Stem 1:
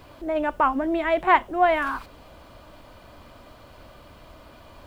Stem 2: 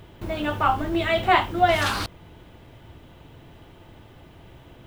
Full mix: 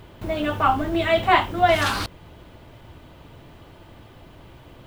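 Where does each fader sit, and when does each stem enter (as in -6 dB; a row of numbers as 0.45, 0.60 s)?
-7.0, +1.0 dB; 0.00, 0.00 s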